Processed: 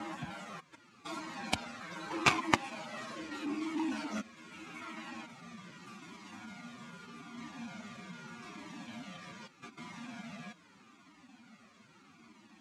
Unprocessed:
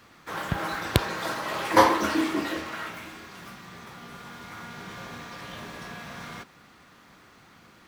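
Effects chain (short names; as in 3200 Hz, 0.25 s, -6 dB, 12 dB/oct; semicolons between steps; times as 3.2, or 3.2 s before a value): slices in reverse order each 94 ms, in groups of 7; in parallel at +1.5 dB: compressor 6:1, threshold -39 dBFS, peak gain reduction 24.5 dB; on the sum: time stretch by phase-locked vocoder 1.6×; bell 250 Hz +10.5 dB 0.87 oct; added harmonics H 3 -7 dB, 5 -35 dB, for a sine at -0.5 dBFS; speaker cabinet 140–9800 Hz, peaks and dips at 220 Hz +3 dB, 470 Hz -7 dB, 1700 Hz -4 dB, 2400 Hz +5 dB, 6900 Hz +4 dB; cascading flanger falling 0.81 Hz; gain +2.5 dB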